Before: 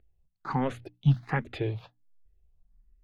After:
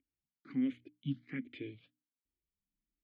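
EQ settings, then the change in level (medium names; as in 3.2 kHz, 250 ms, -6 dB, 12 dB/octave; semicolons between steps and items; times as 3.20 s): vowel filter i; +2.0 dB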